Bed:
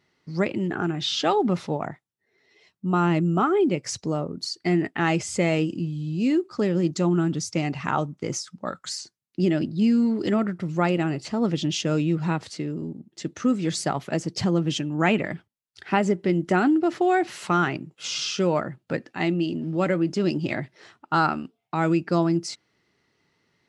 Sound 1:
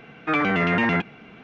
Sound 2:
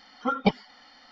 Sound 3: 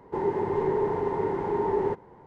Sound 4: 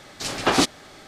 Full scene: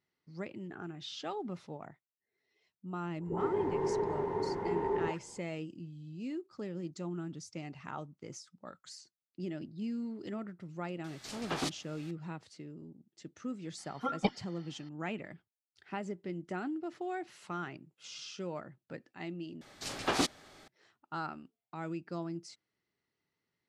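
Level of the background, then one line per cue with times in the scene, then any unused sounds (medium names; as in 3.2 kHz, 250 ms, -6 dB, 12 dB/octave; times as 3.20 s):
bed -17.5 dB
3.15 s: add 3 -7 dB + phase dispersion highs, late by 114 ms, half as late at 880 Hz
11.04 s: add 4 -16.5 dB + tape noise reduction on one side only encoder only
13.78 s: add 2 -8 dB
19.61 s: replace with 4 -11 dB
not used: 1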